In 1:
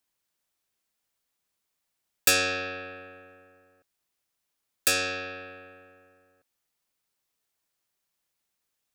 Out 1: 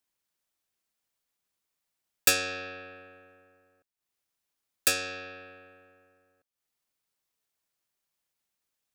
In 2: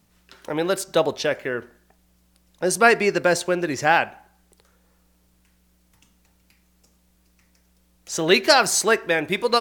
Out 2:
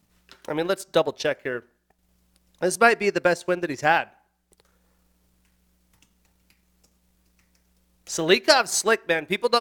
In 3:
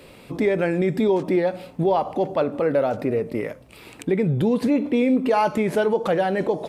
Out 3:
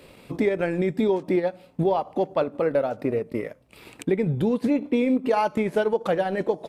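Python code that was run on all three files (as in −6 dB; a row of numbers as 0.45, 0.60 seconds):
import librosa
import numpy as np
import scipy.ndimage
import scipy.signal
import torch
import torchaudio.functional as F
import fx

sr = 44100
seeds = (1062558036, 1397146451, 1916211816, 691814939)

y = fx.transient(x, sr, attack_db=3, sustain_db=-9)
y = y * 10.0 ** (-3.0 / 20.0)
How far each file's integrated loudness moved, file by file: −1.5, −2.0, −2.5 LU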